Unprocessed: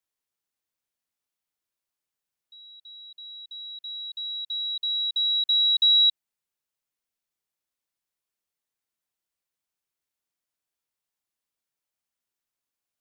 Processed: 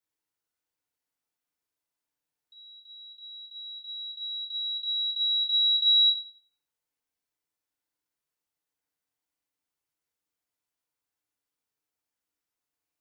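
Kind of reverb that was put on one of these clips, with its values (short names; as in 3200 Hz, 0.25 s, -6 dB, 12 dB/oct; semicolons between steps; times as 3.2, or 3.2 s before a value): FDN reverb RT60 1.3 s, low-frequency decay 0.85×, high-frequency decay 0.35×, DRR -2.5 dB; gain -4 dB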